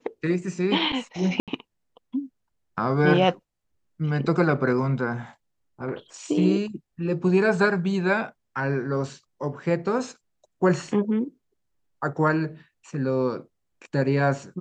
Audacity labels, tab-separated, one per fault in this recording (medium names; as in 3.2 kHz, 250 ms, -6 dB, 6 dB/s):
1.400000	1.480000	dropout 77 ms